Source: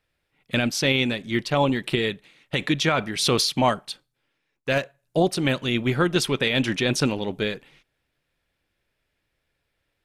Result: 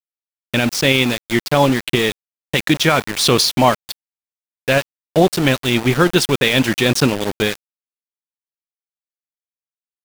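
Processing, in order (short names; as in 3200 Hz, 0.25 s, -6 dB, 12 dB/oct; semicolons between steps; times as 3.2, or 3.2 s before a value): sample gate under -27 dBFS; AGC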